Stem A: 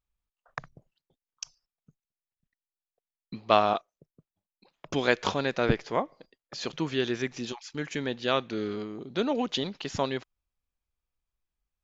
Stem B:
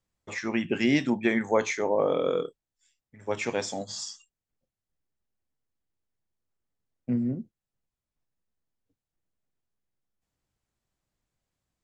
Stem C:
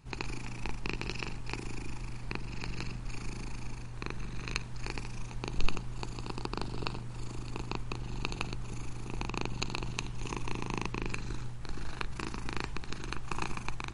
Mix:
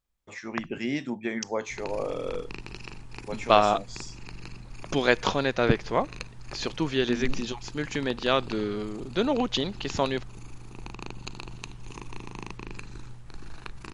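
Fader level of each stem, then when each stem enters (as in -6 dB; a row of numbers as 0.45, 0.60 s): +2.5, -6.5, -4.0 dB; 0.00, 0.00, 1.65 s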